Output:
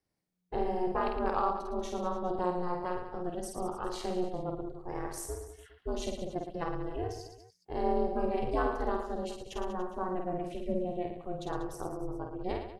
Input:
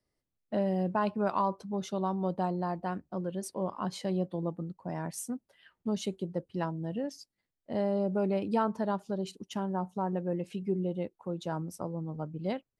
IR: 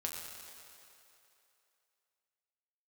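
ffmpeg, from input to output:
-af "aeval=exprs='val(0)*sin(2*PI*180*n/s)':c=same,aecho=1:1:50|112.5|190.6|288.3|410.4:0.631|0.398|0.251|0.158|0.1"

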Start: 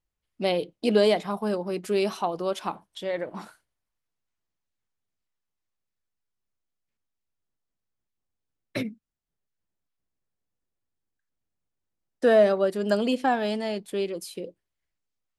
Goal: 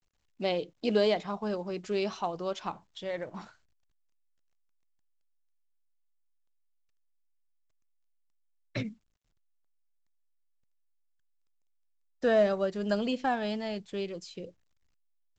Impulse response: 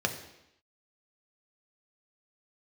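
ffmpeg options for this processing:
-af "asubboost=boost=4.5:cutoff=130,volume=-4.5dB" -ar 16000 -c:a pcm_mulaw

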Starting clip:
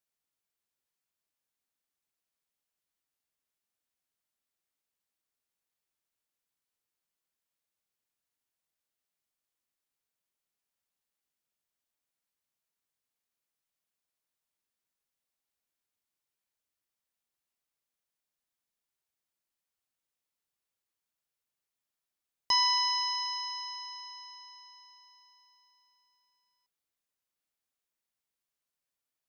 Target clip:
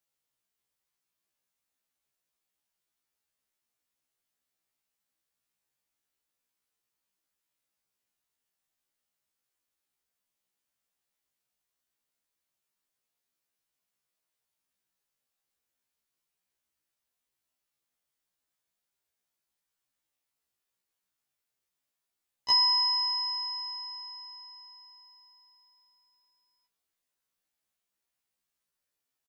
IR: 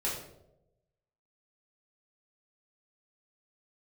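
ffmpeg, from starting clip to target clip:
-af "aecho=1:1:69|138|207|276:0.1|0.051|0.026|0.0133,afftfilt=real='re*1.73*eq(mod(b,3),0)':imag='im*1.73*eq(mod(b,3),0)':win_size=2048:overlap=0.75,volume=5dB"

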